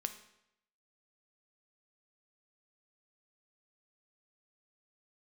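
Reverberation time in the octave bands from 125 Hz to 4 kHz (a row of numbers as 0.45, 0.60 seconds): 0.80, 0.80, 0.80, 0.80, 0.80, 0.70 seconds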